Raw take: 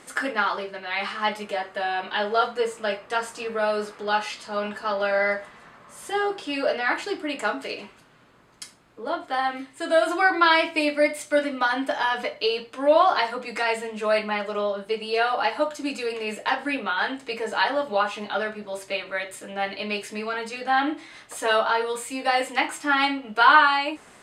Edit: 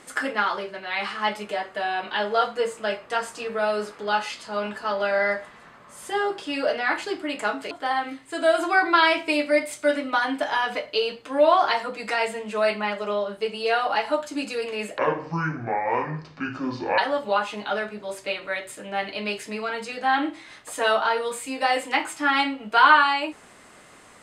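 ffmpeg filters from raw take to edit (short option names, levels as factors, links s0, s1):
-filter_complex "[0:a]asplit=4[s0][s1][s2][s3];[s0]atrim=end=7.712[s4];[s1]atrim=start=9.188:end=16.464[s5];[s2]atrim=start=16.46:end=17.62,asetpts=PTS-STARTPTS,asetrate=25578,aresample=44100[s6];[s3]atrim=start=17.616[s7];[s4][s5]acrossfade=d=0.004:c1=hsin:c2=hsin[s8];[s8][s6]acrossfade=d=0.004:c1=hsin:c2=hsin[s9];[s9][s7]acrossfade=d=0.004:c1=hsin:c2=hsin"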